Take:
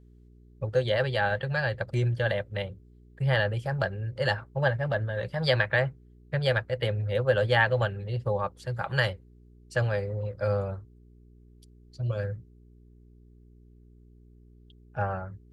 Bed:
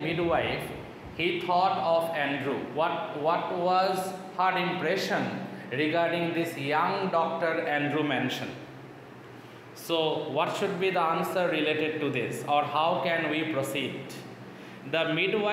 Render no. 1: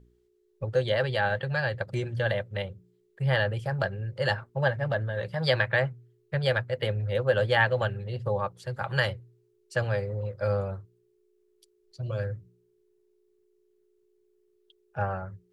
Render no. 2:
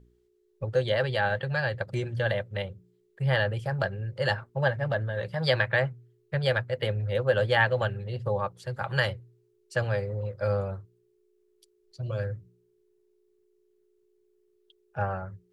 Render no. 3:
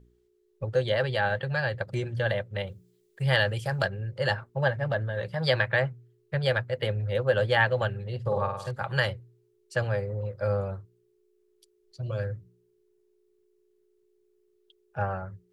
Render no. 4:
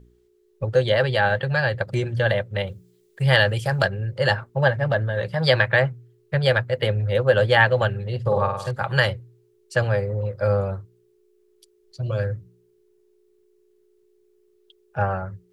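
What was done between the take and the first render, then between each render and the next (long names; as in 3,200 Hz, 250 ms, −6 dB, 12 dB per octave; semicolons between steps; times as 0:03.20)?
hum removal 60 Hz, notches 5
no processing that can be heard
0:02.67–0:03.88: high-shelf EQ 2,900 Hz +11 dB; 0:08.20–0:08.71: flutter between parallel walls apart 8.8 metres, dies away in 0.75 s; 0:09.86–0:10.63: dynamic equaliser 4,000 Hz, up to −5 dB, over −53 dBFS, Q 0.85
level +6.5 dB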